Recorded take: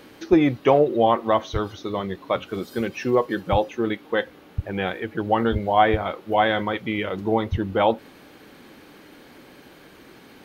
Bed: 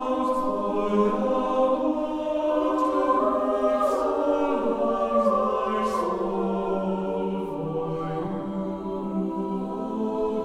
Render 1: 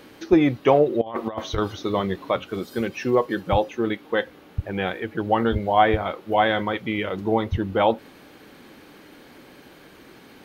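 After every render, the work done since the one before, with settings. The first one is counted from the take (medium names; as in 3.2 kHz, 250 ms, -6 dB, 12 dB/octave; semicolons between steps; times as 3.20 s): 1.01–2.31 s: compressor with a negative ratio -24 dBFS, ratio -0.5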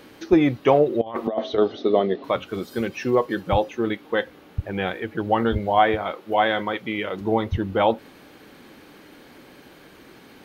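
1.27–2.24 s: cabinet simulation 220–4400 Hz, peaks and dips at 240 Hz +9 dB, 420 Hz +8 dB, 660 Hz +10 dB, 1 kHz -7 dB, 1.5 kHz -5 dB, 2.4 kHz -5 dB; 5.79–7.21 s: high-pass 210 Hz 6 dB/octave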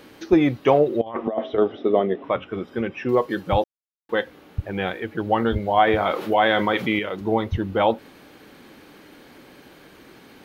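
1.09–3.09 s: Savitzky-Golay filter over 25 samples; 3.64–4.09 s: mute; 5.87–6.99 s: level flattener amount 50%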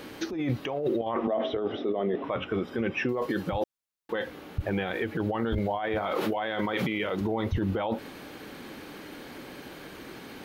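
compressor with a negative ratio -25 dBFS, ratio -1; peak limiter -19 dBFS, peak gain reduction 11.5 dB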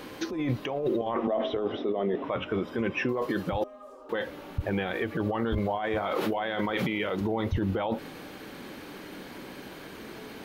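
add bed -24.5 dB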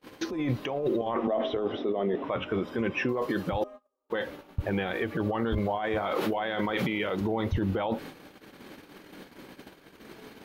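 gate -41 dBFS, range -36 dB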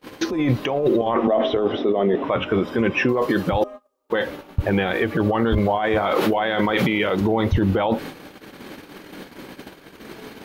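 trim +9 dB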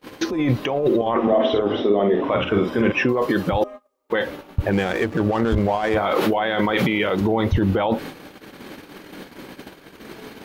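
1.22–2.92 s: doubling 49 ms -4.5 dB; 3.64–4.19 s: peaking EQ 2.1 kHz +5.5 dB 0.37 oct; 4.71–5.95 s: hysteresis with a dead band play -26.5 dBFS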